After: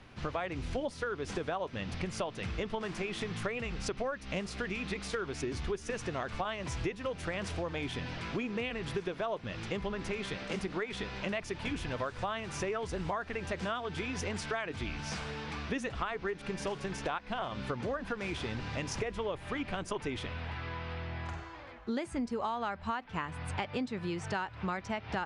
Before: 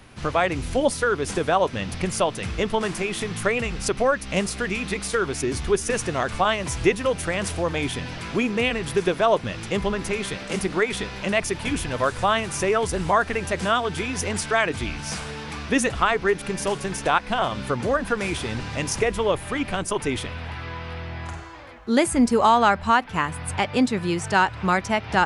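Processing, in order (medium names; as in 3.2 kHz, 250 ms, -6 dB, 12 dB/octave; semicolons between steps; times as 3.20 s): low-pass 5.2 kHz 12 dB/octave; compression 6:1, threshold -26 dBFS, peak gain reduction 13 dB; trim -6 dB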